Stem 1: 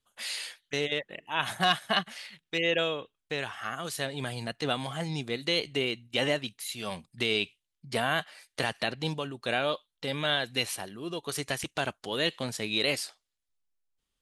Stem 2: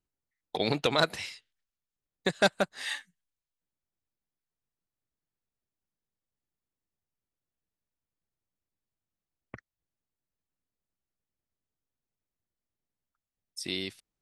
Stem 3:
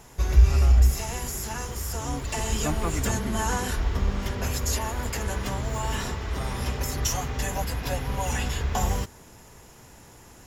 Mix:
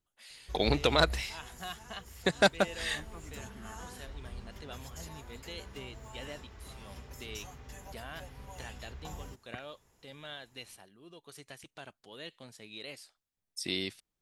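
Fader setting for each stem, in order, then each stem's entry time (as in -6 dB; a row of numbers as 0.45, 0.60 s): -17.0, 0.0, -19.5 dB; 0.00, 0.00, 0.30 s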